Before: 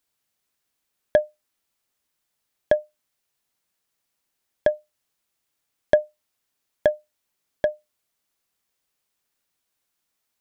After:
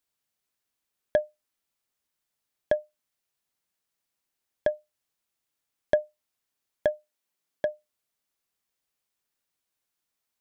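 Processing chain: 6.92–7.72 HPF 240 Hz -> 99 Hz; gain -5.5 dB

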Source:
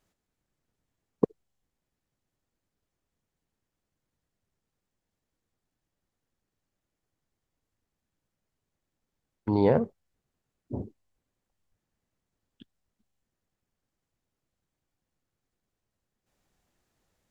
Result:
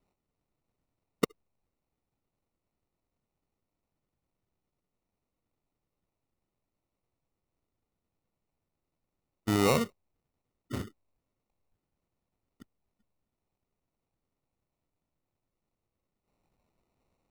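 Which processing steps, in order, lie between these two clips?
in parallel at -0.5 dB: limiter -16 dBFS, peak gain reduction 9 dB; on the sum: sample-and-hold 27×; gain -7 dB

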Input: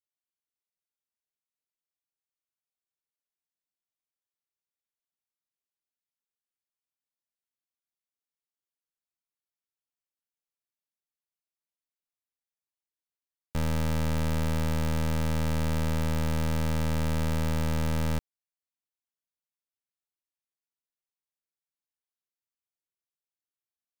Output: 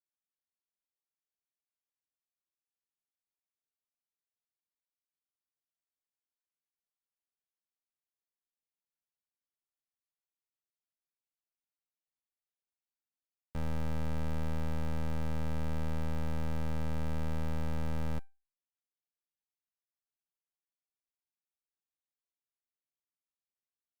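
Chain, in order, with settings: high shelf 2900 Hz -9 dB; resonator 790 Hz, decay 0.29 s, mix 60%

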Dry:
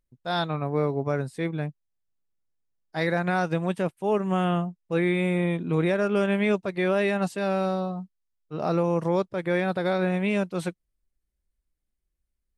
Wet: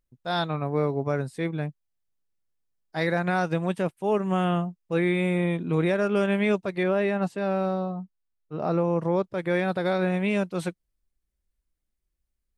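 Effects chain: 6.83–9.24 high shelf 3100 Hz -11 dB

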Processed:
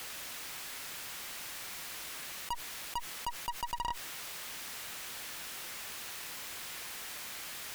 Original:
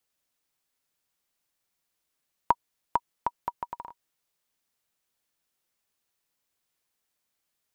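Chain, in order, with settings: bell 2000 Hz +6.5 dB 2.4 oct; tube stage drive 48 dB, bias 0.65; fast leveller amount 70%; gain +15 dB

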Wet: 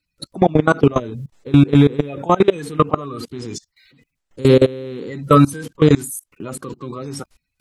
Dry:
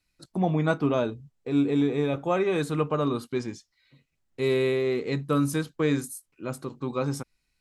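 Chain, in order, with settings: bin magnitudes rounded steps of 30 dB; level quantiser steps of 24 dB; maximiser +20 dB; gain -1 dB

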